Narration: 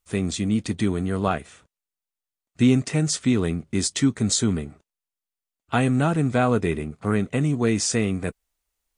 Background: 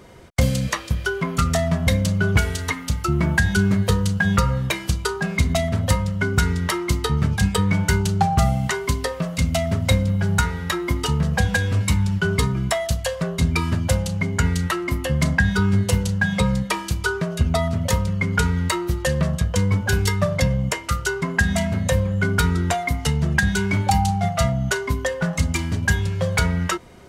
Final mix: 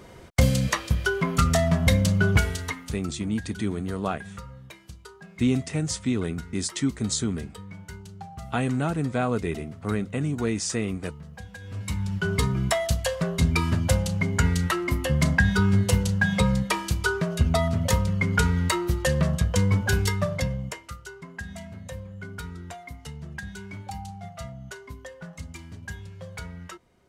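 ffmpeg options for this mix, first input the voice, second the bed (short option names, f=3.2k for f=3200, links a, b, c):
-filter_complex "[0:a]adelay=2800,volume=-5dB[a];[1:a]volume=19dB,afade=t=out:st=2.22:d=0.9:silence=0.0891251,afade=t=in:st=11.59:d=1.03:silence=0.1,afade=t=out:st=19.78:d=1.19:silence=0.158489[b];[a][b]amix=inputs=2:normalize=0"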